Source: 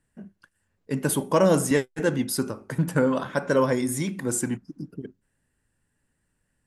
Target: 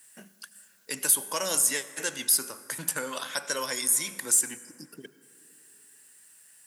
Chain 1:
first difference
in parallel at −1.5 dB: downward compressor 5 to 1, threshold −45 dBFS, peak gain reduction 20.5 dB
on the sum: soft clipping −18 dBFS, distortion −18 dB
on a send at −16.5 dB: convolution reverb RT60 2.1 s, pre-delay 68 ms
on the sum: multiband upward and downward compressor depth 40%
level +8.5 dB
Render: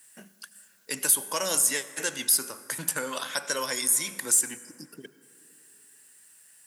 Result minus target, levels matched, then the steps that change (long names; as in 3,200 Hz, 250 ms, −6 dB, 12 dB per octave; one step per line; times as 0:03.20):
downward compressor: peak gain reduction −6.5 dB
change: downward compressor 5 to 1, threshold −53 dBFS, peak gain reduction 27 dB